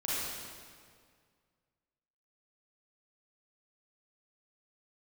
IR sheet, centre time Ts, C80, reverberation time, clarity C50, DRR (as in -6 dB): 0.143 s, -1.5 dB, 2.0 s, -5.0 dB, -9.0 dB